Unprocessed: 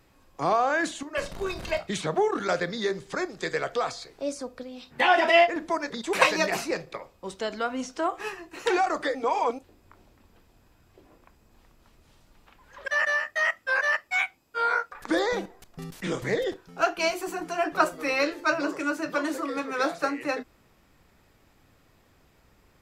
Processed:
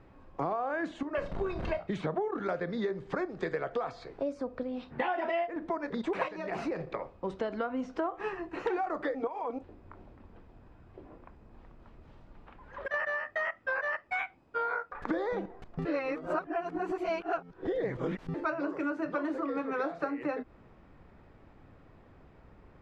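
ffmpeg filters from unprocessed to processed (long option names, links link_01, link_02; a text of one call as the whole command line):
ffmpeg -i in.wav -filter_complex "[0:a]asettb=1/sr,asplit=3[link_01][link_02][link_03];[link_01]atrim=end=6.284[link_04];[link_02]atrim=start=6.28:end=7.4,asetpts=PTS-STARTPTS,afade=type=in:duration=0.004:curve=qsin,afade=type=out:start_time=1.116:duration=0.004:curve=qsin,acompressor=threshold=-31dB:ratio=4:attack=3.2:release=140:knee=1:detection=peak[link_05];[link_03]atrim=start=7.396[link_06];[link_04][link_05]acrossfade=duration=0.004:curve1=hsin:curve2=qsin[link_07];[link_07][link_06]acrossfade=duration=0.004:curve1=qsin:curve2=hsin,asettb=1/sr,asplit=3[link_08][link_09][link_10];[link_08]atrim=end=9.274[link_11];[link_09]atrim=start=9.27:end=12.94,asetpts=PTS-STARTPTS,afade=type=in:duration=0.004:curve=qsin,afade=type=out:start_time=3.666:duration=0.004:curve=qsin,acompressor=threshold=-36dB:ratio=2.5:attack=3.2:release=140:knee=1:detection=peak[link_12];[link_10]atrim=start=12.936[link_13];[link_11][link_12]acrossfade=duration=0.004:curve1=hsin:curve2=qsin[link_14];[link_14][link_13]acrossfade=duration=0.004:curve1=qsin:curve2=hsin,asplit=3[link_15][link_16][link_17];[link_15]atrim=end=15.852[link_18];[link_16]atrim=start=15.848:end=18.342,asetpts=PTS-STARTPTS,areverse[link_19];[link_17]atrim=start=18.338[link_20];[link_18][link_19]acrossfade=duration=0.004:curve1=hsin:curve2=hsin[link_21];[link_21][link_20]acrossfade=duration=0.004:curve1=hsin:curve2=hsin,lowpass=frequency=1500:poles=1,aemphasis=mode=reproduction:type=75fm,acompressor=threshold=-35dB:ratio=6,volume=5dB" out.wav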